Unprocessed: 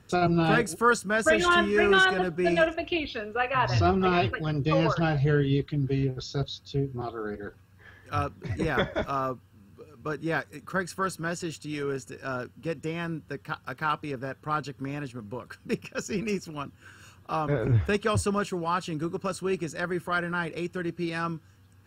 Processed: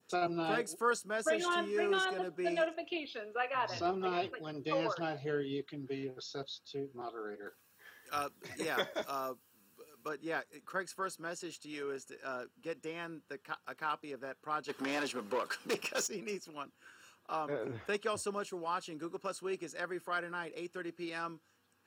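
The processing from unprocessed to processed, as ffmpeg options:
-filter_complex "[0:a]asettb=1/sr,asplit=3[a][b][c];[a]atrim=end=7.464[d];[b]atrim=start=7.46:end=10.09,asetpts=PTS-STARTPTS,afade=t=in:d=0.004:c=qsin,afade=t=out:st=2.626:d=0.004:c=qsin,aemphasis=mode=production:type=75kf[e];[c]atrim=start=10.086[f];[d][e]acrossfade=d=0.004:c1=hsin:c2=qsin[g];[g][f]acrossfade=d=0.004:c1=qsin:c2=hsin,asplit=3[h][i][j];[h]afade=t=out:st=14.68:d=0.02[k];[i]asplit=2[l][m];[m]highpass=f=720:p=1,volume=28dB,asoftclip=type=tanh:threshold=-15dB[n];[l][n]amix=inputs=2:normalize=0,lowpass=f=5.4k:p=1,volume=-6dB,afade=t=in:st=14.68:d=0.02,afade=t=out:st=16.06:d=0.02[o];[j]afade=t=in:st=16.06:d=0.02[p];[k][o][p]amix=inputs=3:normalize=0,highpass=340,adynamicequalizer=threshold=0.00891:dfrequency=1800:dqfactor=0.77:tfrequency=1800:tqfactor=0.77:attack=5:release=100:ratio=0.375:range=4:mode=cutabove:tftype=bell,volume=-7dB"

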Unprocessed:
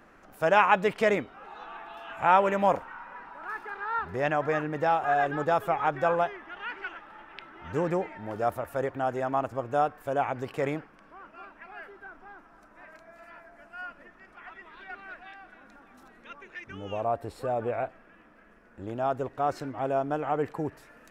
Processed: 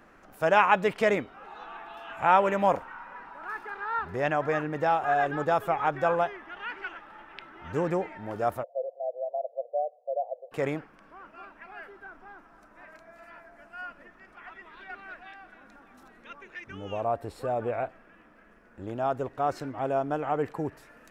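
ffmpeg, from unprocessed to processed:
-filter_complex "[0:a]asplit=3[a][b][c];[a]afade=t=out:st=8.62:d=0.02[d];[b]asuperpass=centerf=590:order=8:qfactor=2.6,afade=t=in:st=8.62:d=0.02,afade=t=out:st=10.51:d=0.02[e];[c]afade=t=in:st=10.51:d=0.02[f];[d][e][f]amix=inputs=3:normalize=0"

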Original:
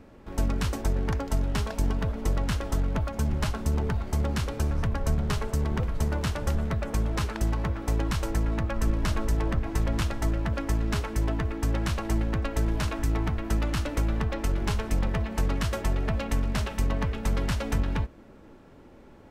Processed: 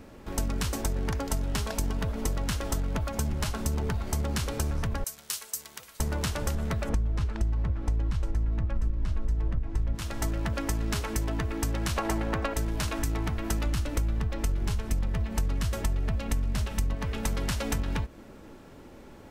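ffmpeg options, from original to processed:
-filter_complex "[0:a]asettb=1/sr,asplit=3[a][b][c];[a]atrim=end=5.044[d];[b]atrim=start=5.04:end=6,asetpts=PTS-STARTPTS,afade=t=in:d=0.004:c=qsin,afade=t=out:st=0.956:d=0.004:c=qsin,aderivative[e];[c]atrim=start=5.996[f];[d][e]acrossfade=d=0.004:c1=hsin:c2=qsin[g];[g][f]acrossfade=d=0.004:c1=qsin:c2=hsin,asettb=1/sr,asplit=3[h][i][j];[h]atrim=end=6.894[k];[i]atrim=start=6.89:end=9.95,asetpts=PTS-STARTPTS,afade=t=in:d=0.004:c=qsin,afade=t=out:st=3.056:d=0.004:c=qsin,aemphasis=mode=reproduction:type=bsi[l];[j]atrim=start=9.946[m];[k][l]acrossfade=d=0.004:c1=hsin:c2=qsin[n];[n][m]acrossfade=d=0.004:c1=qsin:c2=hsin,asettb=1/sr,asplit=3[o][p][q];[o]atrim=end=11.964[r];[p]atrim=start=11.96:end=12.54,asetpts=PTS-STARTPTS,afade=t=in:d=0.004:c=qsin,afade=t=out:st=0.576:d=0.004:c=qsin,equalizer=f=900:w=0.38:g=10[s];[q]atrim=start=12.536[t];[r][s]acrossfade=d=0.004:c1=hsin:c2=qsin[u];[u][t]acrossfade=d=0.004:c1=qsin:c2=hsin,asettb=1/sr,asplit=3[v][w][x];[v]atrim=end=13.664[y];[w]atrim=start=13.66:end=16.95,asetpts=PTS-STARTPTS,afade=t=in:d=0.004:c=qsin,afade=t=out:st=3.286:d=0.004:c=qsin,lowshelf=f=180:g=9.5[z];[x]atrim=start=16.946[aa];[y][z]acrossfade=d=0.004:c1=hsin:c2=qsin[ab];[ab][aa]acrossfade=d=0.004:c1=qsin:c2=hsin,highshelf=f=4k:g=9,acompressor=threshold=-28dB:ratio=6,volume=2.5dB"

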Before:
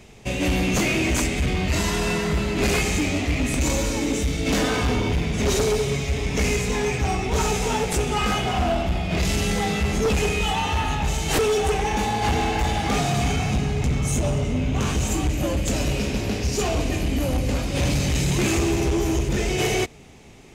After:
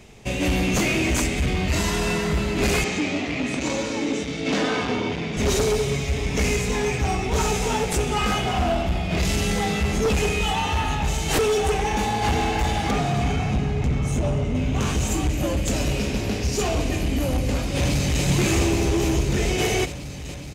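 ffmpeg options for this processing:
-filter_complex "[0:a]asettb=1/sr,asplit=3[a][b][c];[a]atrim=end=2.844[d];[b]atrim=start=2.84:end=5.37,asetpts=PTS-STARTPTS,afade=t=in:d=0.004:c=qsin,afade=t=out:st=2.526:d=0.004:c=qsin,highpass=170,lowpass=5.2k[e];[c]atrim=start=5.366[f];[d][e]acrossfade=d=0.004:c1=hsin:c2=qsin[g];[g][f]acrossfade=d=0.004:c1=qsin:c2=hsin,asettb=1/sr,asplit=3[h][i][j];[h]atrim=end=12.914[k];[i]atrim=start=12.91:end=14.55,asetpts=PTS-STARTPTS,afade=t=in:d=0.004:c=qsin,afade=t=out:st=1.636:d=0.004:c=qsin,highshelf=f=4.2k:g=-11[l];[j]atrim=start=14.546[m];[k][l]acrossfade=d=0.004:c1=hsin:c2=qsin[n];[n][m]acrossfade=d=0.004:c1=qsin:c2=hsin,asplit=2[o][p];[p]afade=t=in:st=17.76:d=0.01,afade=t=out:st=18.24:d=0.01,aecho=0:1:420|840|1260|1680|2100|2520|2940|3360|3780|4200|4620|5040:0.562341|0.449873|0.359898|0.287919|0.230335|0.184268|0.147414|0.117932|0.0943452|0.0754762|0.0603809|0.0483048[q];[o][q]amix=inputs=2:normalize=0"

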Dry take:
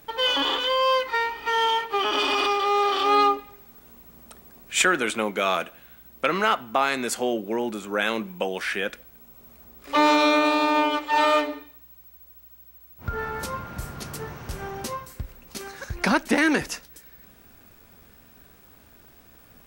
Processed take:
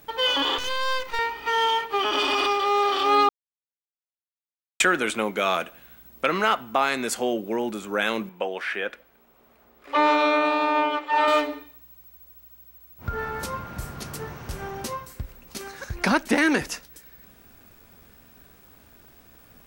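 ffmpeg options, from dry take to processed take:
-filter_complex "[0:a]asettb=1/sr,asplit=3[a][b][c];[a]atrim=end=0.584[d];[b]atrim=start=0.58:end=1.19,asetpts=PTS-STARTPTS,afade=t=in:d=0.004:c=qsin,afade=t=out:st=0.606:d=0.004:c=qsin,aeval=exprs='max(val(0),0)':c=same[e];[c]atrim=start=1.186[f];[d][e]acrossfade=d=0.004:c1=hsin:c2=qsin[g];[g][f]acrossfade=d=0.004:c1=qsin:c2=hsin,asettb=1/sr,asplit=3[h][i][j];[h]atrim=end=8.294[k];[i]atrim=start=8.29:end=11.28,asetpts=PTS-STARTPTS,afade=t=in:d=0.004:c=qsin,afade=t=out:st=2.986:d=0.004:c=qsin,bass=f=250:g=-12,treble=f=4k:g=-13[l];[j]atrim=start=11.276[m];[k][l]acrossfade=d=0.004:c1=hsin:c2=qsin[n];[n][m]acrossfade=d=0.004:c1=qsin:c2=hsin,asplit=3[o][p][q];[o]atrim=end=3.29,asetpts=PTS-STARTPTS,afade=t=out:st=3.286:d=0.004:c=hsin[r];[p]atrim=start=3.29:end=4.8,asetpts=PTS-STARTPTS,volume=0[s];[q]atrim=start=4.8,asetpts=PTS-STARTPTS,afade=t=in:d=0.004:c=hsin[t];[r][s][t]concat=n=3:v=0:a=1"

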